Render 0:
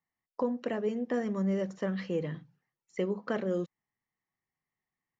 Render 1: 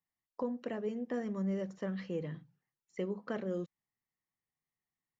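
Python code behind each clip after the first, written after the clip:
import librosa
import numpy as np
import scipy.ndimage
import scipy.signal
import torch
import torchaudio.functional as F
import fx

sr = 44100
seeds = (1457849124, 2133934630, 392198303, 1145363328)

y = fx.low_shelf(x, sr, hz=220.0, db=3.5)
y = y * librosa.db_to_amplitude(-6.5)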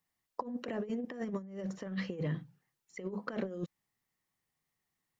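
y = fx.over_compress(x, sr, threshold_db=-40.0, ratio=-0.5)
y = y * librosa.db_to_amplitude(3.5)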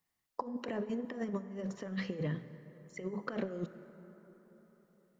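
y = fx.rev_plate(x, sr, seeds[0], rt60_s=4.2, hf_ratio=0.45, predelay_ms=0, drr_db=12.0)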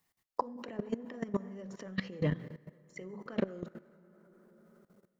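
y = fx.level_steps(x, sr, step_db=17)
y = y * librosa.db_to_amplitude(6.5)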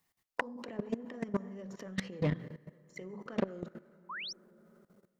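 y = fx.self_delay(x, sr, depth_ms=0.29)
y = fx.spec_paint(y, sr, seeds[1], shape='rise', start_s=4.09, length_s=0.24, low_hz=920.0, high_hz=6100.0, level_db=-41.0)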